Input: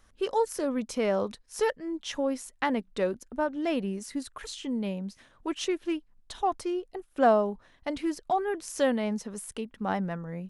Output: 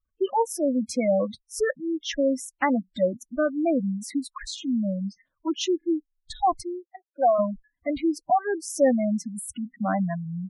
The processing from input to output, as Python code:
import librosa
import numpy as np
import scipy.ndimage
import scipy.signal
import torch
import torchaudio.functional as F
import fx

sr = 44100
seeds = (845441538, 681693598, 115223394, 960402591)

y = fx.noise_reduce_blind(x, sr, reduce_db=24)
y = fx.spec_gate(y, sr, threshold_db=-15, keep='strong')
y = fx.bandpass_edges(y, sr, low_hz=fx.line((6.62, 410.0), (7.38, 790.0)), high_hz=2400.0, at=(6.62, 7.38), fade=0.02)
y = F.gain(torch.from_numpy(y), 6.0).numpy()